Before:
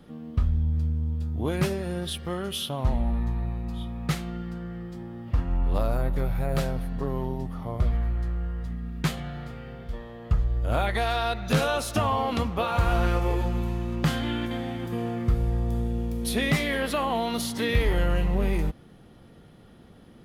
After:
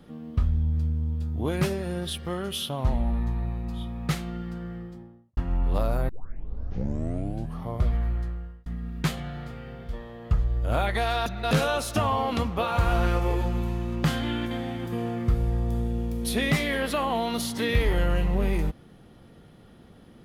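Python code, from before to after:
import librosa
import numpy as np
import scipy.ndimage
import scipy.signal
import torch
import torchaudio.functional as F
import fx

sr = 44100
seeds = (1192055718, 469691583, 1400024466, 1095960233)

y = fx.studio_fade_out(x, sr, start_s=4.66, length_s=0.71)
y = fx.edit(y, sr, fx.tape_start(start_s=6.09, length_s=1.54),
    fx.fade_out_span(start_s=8.15, length_s=0.51),
    fx.reverse_span(start_s=11.26, length_s=0.25), tone=tone)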